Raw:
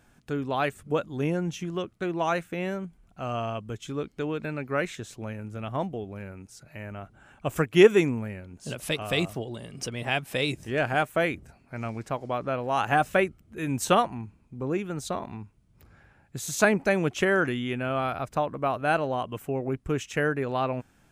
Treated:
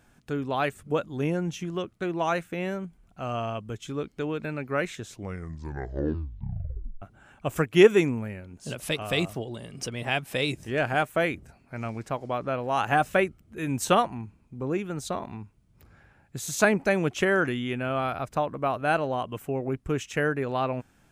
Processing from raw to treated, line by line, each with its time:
5.03 s: tape stop 1.99 s

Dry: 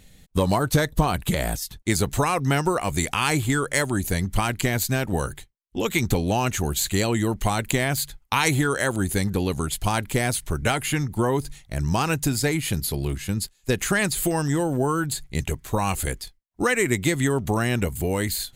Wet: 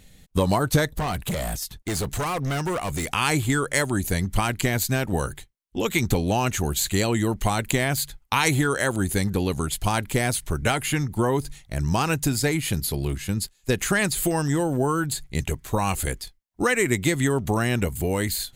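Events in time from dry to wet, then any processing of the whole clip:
0.86–3.13 s: overload inside the chain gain 23 dB

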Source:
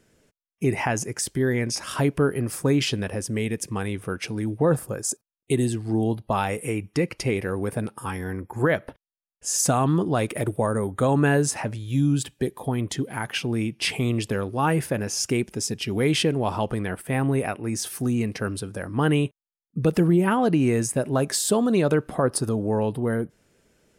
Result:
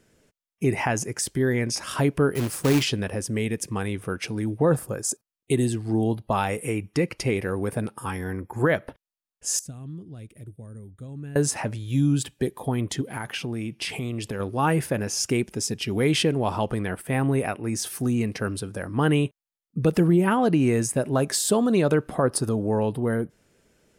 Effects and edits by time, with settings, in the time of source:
2.35–2.83 s: companded quantiser 4-bit
9.59–11.36 s: amplifier tone stack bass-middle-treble 10-0-1
13.01–14.40 s: compression, threshold -26 dBFS

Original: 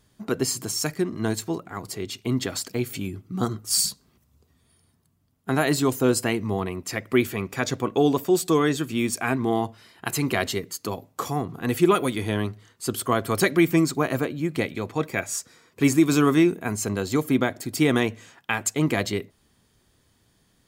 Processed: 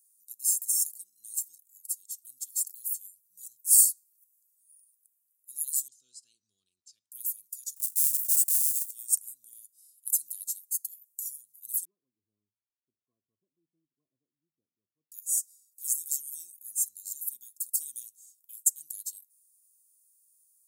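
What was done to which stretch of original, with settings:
5.88–7.12 s: low-pass 4.4 kHz 24 dB/octave
7.76–8.91 s: square wave that keeps the level
11.85–15.12 s: rippled Chebyshev low-pass 1.1 kHz, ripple 3 dB
whole clip: inverse Chebyshev high-pass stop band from 2.2 kHz, stop band 70 dB; trim +9 dB

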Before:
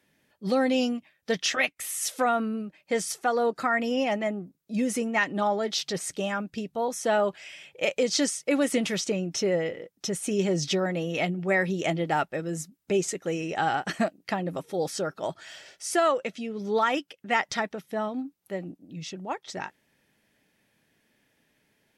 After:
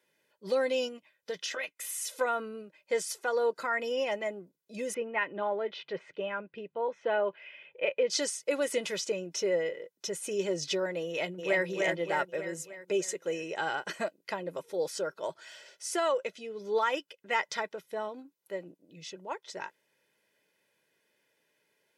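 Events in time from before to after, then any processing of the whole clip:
0.88–2.21 s: compression, threshold -27 dBFS
4.94–8.10 s: Chebyshev low-pass 2.7 kHz, order 3
11.08–11.64 s: echo throw 300 ms, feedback 55%, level -3 dB
whole clip: high-pass 240 Hz 12 dB/octave; comb 2 ms, depth 60%; trim -5.5 dB

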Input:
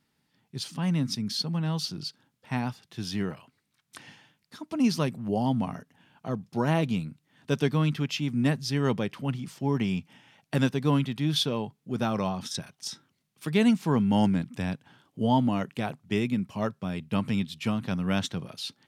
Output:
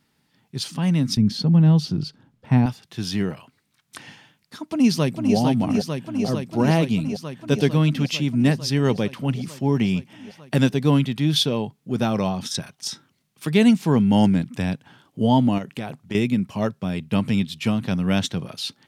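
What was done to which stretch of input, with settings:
1.17–2.66 s: tilt EQ -3 dB/octave
4.69–5.36 s: echo throw 450 ms, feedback 80%, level -4.5 dB
15.58–16.15 s: compression, threshold -31 dBFS
whole clip: dynamic bell 1.2 kHz, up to -5 dB, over -44 dBFS, Q 1.4; trim +6.5 dB

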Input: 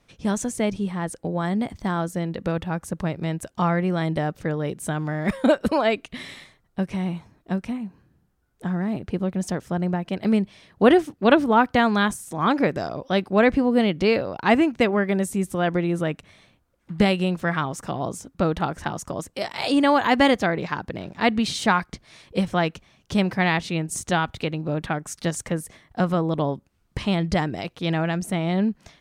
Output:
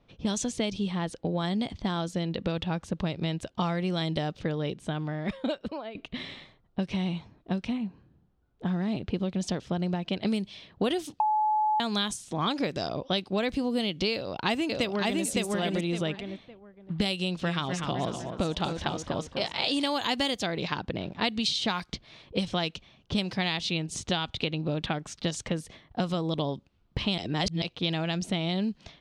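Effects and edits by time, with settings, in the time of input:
4.33–5.95 s: fade out, to -22 dB
11.20–11.80 s: bleep 856 Hz -10 dBFS
14.13–15.24 s: echo throw 560 ms, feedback 20%, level -1.5 dB
17.17–19.88 s: modulated delay 249 ms, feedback 45%, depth 107 cents, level -9.5 dB
27.18–27.62 s: reverse
whole clip: level-controlled noise filter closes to 1.3 kHz, open at -14.5 dBFS; resonant high shelf 2.5 kHz +11 dB, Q 1.5; compression 6:1, threshold -25 dBFS

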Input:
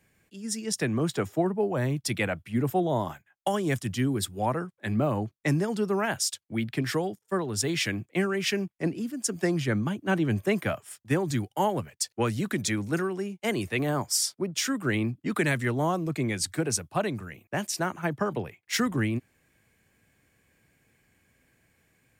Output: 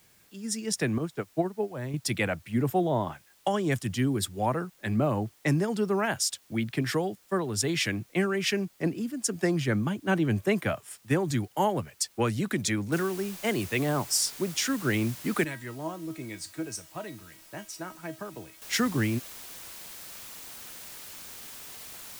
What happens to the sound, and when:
0.98–1.94 s: upward expansion 2.5:1, over -37 dBFS
2.88–3.70 s: low-pass 3.6 kHz -> 8.6 kHz
12.92 s: noise floor step -62 dB -44 dB
15.44–18.62 s: feedback comb 320 Hz, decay 0.21 s, mix 80%

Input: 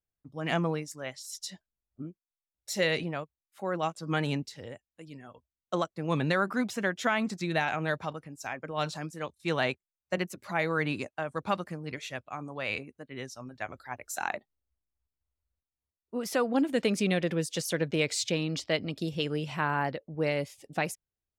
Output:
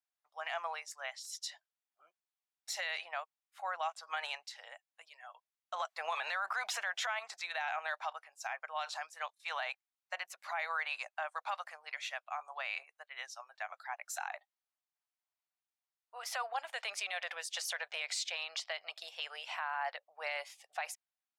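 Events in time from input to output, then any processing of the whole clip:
5.80–7.19 s: gain +10 dB
whole clip: elliptic high-pass 710 Hz, stop band 60 dB; treble shelf 7.4 kHz -9.5 dB; peak limiter -28.5 dBFS; trim +1.5 dB

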